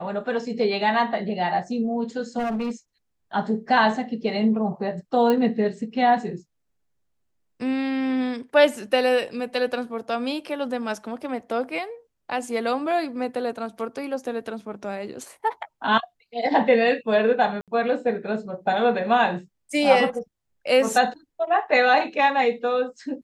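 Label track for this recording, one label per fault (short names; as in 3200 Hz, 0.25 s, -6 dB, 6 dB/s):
2.380000	2.720000	clipped -23 dBFS
5.300000	5.300000	pop -11 dBFS
17.610000	17.680000	gap 67 ms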